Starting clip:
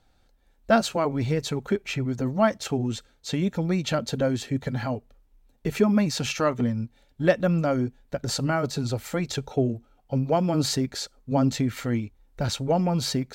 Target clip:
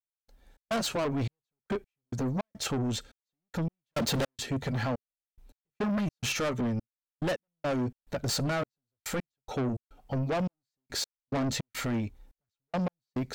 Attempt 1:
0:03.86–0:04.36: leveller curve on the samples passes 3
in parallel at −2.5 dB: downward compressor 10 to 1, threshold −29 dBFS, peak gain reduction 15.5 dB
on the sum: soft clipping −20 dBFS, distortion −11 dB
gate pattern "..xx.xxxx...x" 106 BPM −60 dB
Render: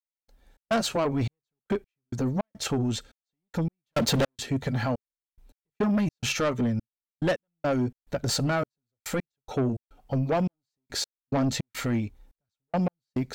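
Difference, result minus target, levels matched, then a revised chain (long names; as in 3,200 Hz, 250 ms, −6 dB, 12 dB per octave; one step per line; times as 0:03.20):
soft clipping: distortion −5 dB
0:03.86–0:04.36: leveller curve on the samples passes 3
in parallel at −2.5 dB: downward compressor 10 to 1, threshold −29 dBFS, peak gain reduction 15.5 dB
on the sum: soft clipping −26.5 dBFS, distortion −6 dB
gate pattern "..xx.xxxx...x" 106 BPM −60 dB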